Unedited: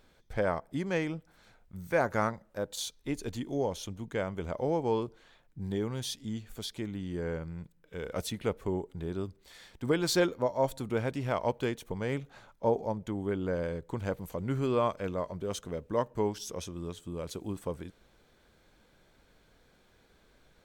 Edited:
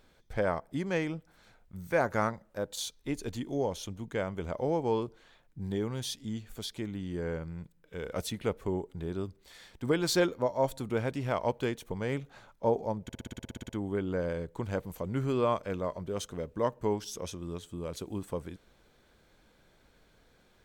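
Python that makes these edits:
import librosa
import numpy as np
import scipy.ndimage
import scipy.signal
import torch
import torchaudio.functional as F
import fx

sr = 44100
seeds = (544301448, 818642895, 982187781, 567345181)

y = fx.edit(x, sr, fx.stutter(start_s=13.03, slice_s=0.06, count=12), tone=tone)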